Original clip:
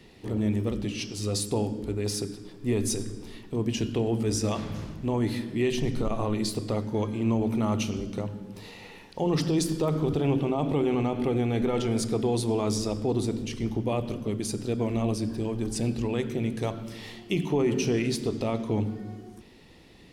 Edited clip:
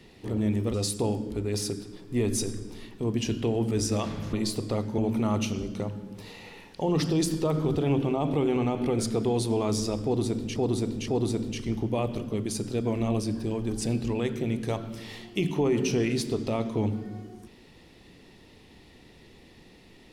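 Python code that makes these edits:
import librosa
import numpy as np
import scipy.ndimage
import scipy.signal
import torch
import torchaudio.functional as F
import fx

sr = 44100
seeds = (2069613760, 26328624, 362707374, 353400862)

y = fx.edit(x, sr, fx.cut(start_s=0.74, length_s=0.52),
    fx.cut(start_s=4.85, length_s=1.47),
    fx.cut(start_s=6.97, length_s=0.39),
    fx.cut(start_s=11.37, length_s=0.6),
    fx.repeat(start_s=13.02, length_s=0.52, count=3), tone=tone)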